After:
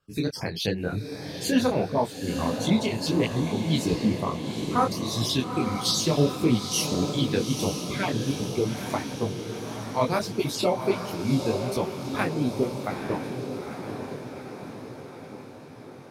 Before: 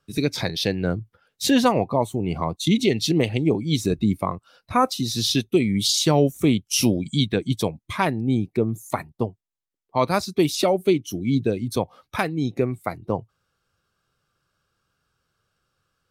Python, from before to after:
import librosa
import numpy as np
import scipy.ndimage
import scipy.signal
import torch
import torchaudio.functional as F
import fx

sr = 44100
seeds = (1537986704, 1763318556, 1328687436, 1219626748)

y = fx.spec_dropout(x, sr, seeds[0], share_pct=24)
y = fx.echo_diffused(y, sr, ms=874, feedback_pct=61, wet_db=-6.5)
y = fx.detune_double(y, sr, cents=53)